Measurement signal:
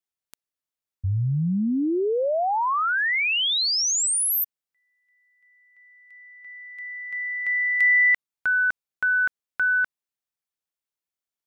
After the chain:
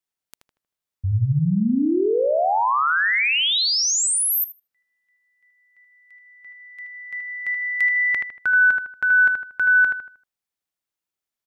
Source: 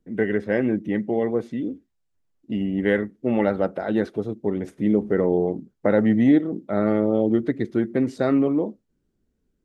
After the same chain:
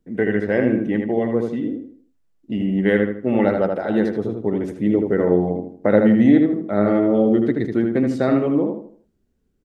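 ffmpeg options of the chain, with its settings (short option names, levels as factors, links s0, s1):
-filter_complex "[0:a]asplit=2[s0][s1];[s1]adelay=78,lowpass=f=3000:p=1,volume=0.631,asplit=2[s2][s3];[s3]adelay=78,lowpass=f=3000:p=1,volume=0.37,asplit=2[s4][s5];[s5]adelay=78,lowpass=f=3000:p=1,volume=0.37,asplit=2[s6][s7];[s7]adelay=78,lowpass=f=3000:p=1,volume=0.37,asplit=2[s8][s9];[s9]adelay=78,lowpass=f=3000:p=1,volume=0.37[s10];[s0][s2][s4][s6][s8][s10]amix=inputs=6:normalize=0,volume=1.26"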